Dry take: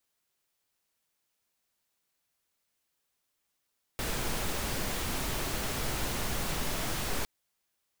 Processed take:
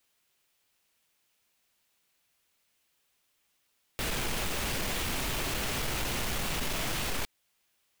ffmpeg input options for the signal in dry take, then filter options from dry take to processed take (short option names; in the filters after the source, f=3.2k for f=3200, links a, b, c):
-f lavfi -i "anoisesrc=c=pink:a=0.122:d=3.26:r=44100:seed=1"
-filter_complex "[0:a]equalizer=f=2.7k:t=o:w=0.98:g=4.5,asplit=2[a][b];[b]alimiter=level_in=3dB:limit=-24dB:level=0:latency=1:release=363,volume=-3dB,volume=-2dB[c];[a][c]amix=inputs=2:normalize=0,asoftclip=type=tanh:threshold=-27dB"